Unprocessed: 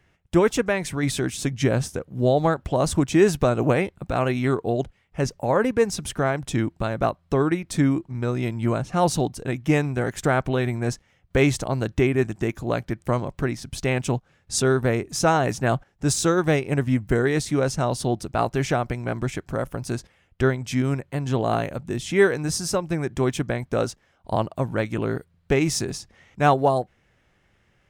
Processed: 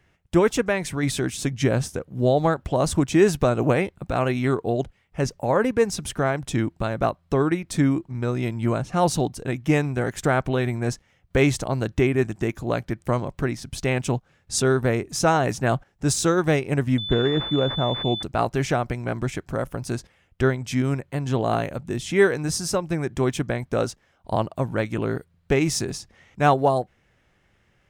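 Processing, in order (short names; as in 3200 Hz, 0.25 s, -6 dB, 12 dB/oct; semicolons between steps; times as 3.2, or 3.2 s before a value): 16.98–18.23 pulse-width modulation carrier 3500 Hz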